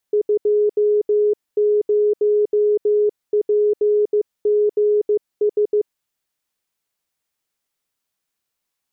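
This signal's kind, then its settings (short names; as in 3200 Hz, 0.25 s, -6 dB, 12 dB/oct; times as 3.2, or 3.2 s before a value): Morse "20PGS" 15 wpm 418 Hz -13 dBFS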